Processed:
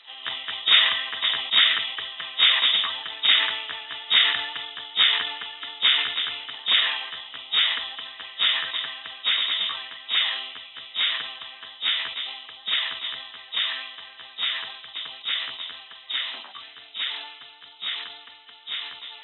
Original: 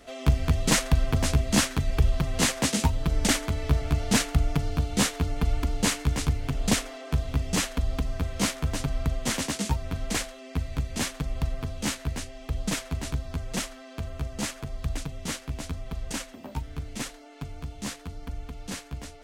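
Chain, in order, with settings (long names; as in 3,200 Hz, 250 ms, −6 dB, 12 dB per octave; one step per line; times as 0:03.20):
hearing-aid frequency compression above 2,300 Hz 4 to 1
high-pass filter 1,400 Hz 12 dB per octave
formants moved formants +4 semitones
dynamic equaliser 1,800 Hz, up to +5 dB, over −45 dBFS, Q 2.2
level that may fall only so fast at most 58 dB per second
level +4.5 dB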